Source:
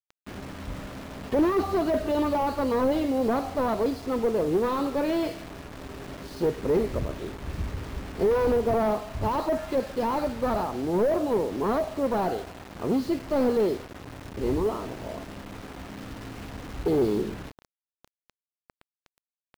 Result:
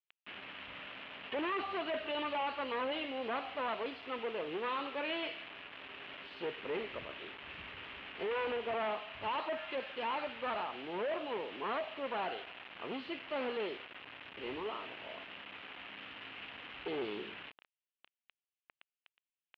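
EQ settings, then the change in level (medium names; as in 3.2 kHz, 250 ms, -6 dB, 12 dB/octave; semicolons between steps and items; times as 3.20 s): band-pass filter 2.9 kHz, Q 3.6; distance through air 500 m; +14.0 dB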